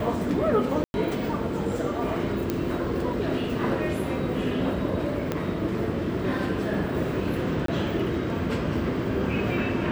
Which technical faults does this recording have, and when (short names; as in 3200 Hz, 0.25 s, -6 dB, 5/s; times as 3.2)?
0.84–0.94 gap 0.101 s
2.5 pop -12 dBFS
5.32 pop -13 dBFS
7.66–7.68 gap 23 ms